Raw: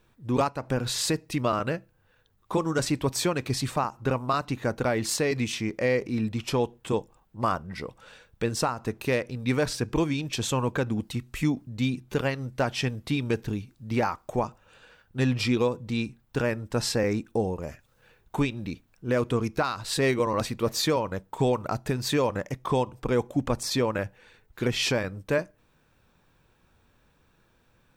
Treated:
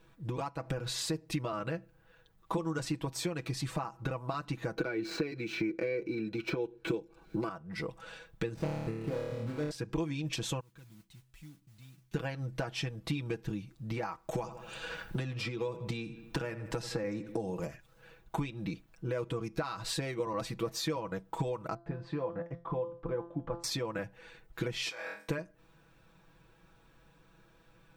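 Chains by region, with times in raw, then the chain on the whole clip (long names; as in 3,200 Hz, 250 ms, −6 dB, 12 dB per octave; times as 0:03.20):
0:04.77–0:07.49: running median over 5 samples + hollow resonant body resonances 360/1,500/2,300/4,000 Hz, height 15 dB, ringing for 20 ms + multiband upward and downward compressor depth 70%
0:08.54–0:09.71: running median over 41 samples + flutter between parallel walls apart 4.6 metres, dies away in 0.82 s
0:10.60–0:12.14: guitar amp tone stack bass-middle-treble 6-0-2 + downward compressor 2 to 1, threshold −60 dBFS + noise that follows the level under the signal 12 dB
0:14.31–0:17.67: feedback echo with a low-pass in the loop 82 ms, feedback 39%, low-pass 4,200 Hz, level −16 dB + multiband upward and downward compressor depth 70%
0:21.74–0:23.64: low-pass filter 1,600 Hz + tuned comb filter 170 Hz, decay 0.34 s, mix 80%
0:24.89–0:25.29: flutter between parallel walls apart 4.1 metres, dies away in 0.36 s + downward compressor 10 to 1, threshold −28 dBFS + high-pass filter 860 Hz
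whole clip: downward compressor 12 to 1, threshold −33 dBFS; high-shelf EQ 5,700 Hz −4.5 dB; comb filter 6.1 ms, depth 73%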